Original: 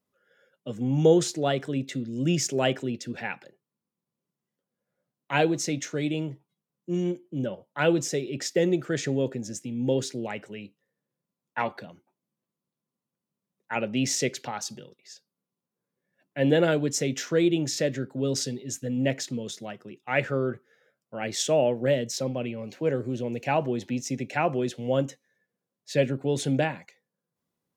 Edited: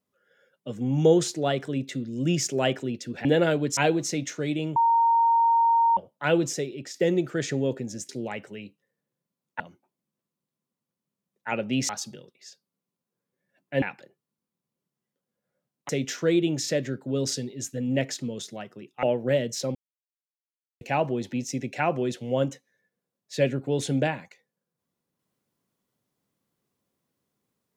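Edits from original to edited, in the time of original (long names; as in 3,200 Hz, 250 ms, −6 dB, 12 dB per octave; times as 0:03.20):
0:03.25–0:05.32: swap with 0:16.46–0:16.98
0:06.31–0:07.52: beep over 924 Hz −17 dBFS
0:08.06–0:08.49: fade out, to −9 dB
0:09.64–0:10.08: remove
0:11.59–0:11.84: remove
0:14.13–0:14.53: remove
0:20.12–0:21.60: remove
0:22.32–0:23.38: silence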